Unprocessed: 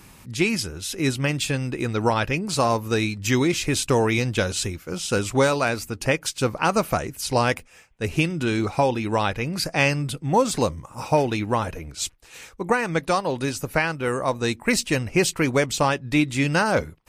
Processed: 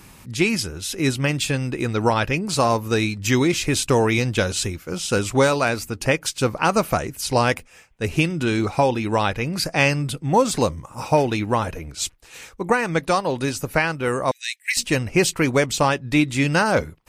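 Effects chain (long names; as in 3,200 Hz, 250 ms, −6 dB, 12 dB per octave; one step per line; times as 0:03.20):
0:14.31–0:14.77: Butterworth high-pass 1,800 Hz 72 dB per octave
level +2 dB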